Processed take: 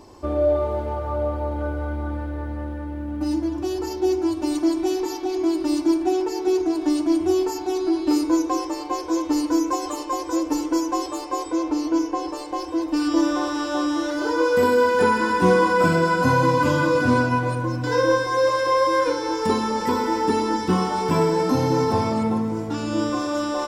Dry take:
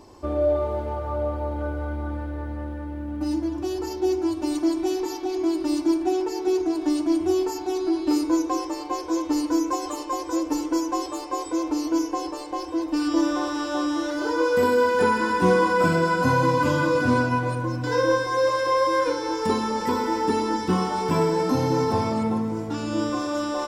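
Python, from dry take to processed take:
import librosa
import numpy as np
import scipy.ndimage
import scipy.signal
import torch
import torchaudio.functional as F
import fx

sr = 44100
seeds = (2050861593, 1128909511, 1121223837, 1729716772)

y = fx.high_shelf(x, sr, hz=fx.line((11.43, 10000.0), (12.27, 6600.0)), db=-12.0, at=(11.43, 12.27), fade=0.02)
y = F.gain(torch.from_numpy(y), 2.0).numpy()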